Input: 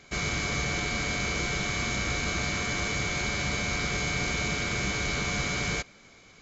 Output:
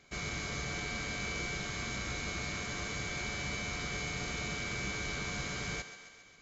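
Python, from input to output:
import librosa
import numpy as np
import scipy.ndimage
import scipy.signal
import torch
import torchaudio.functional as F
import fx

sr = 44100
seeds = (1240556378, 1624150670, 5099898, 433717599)

y = fx.echo_thinned(x, sr, ms=135, feedback_pct=64, hz=350.0, wet_db=-11)
y = y * 10.0 ** (-8.5 / 20.0)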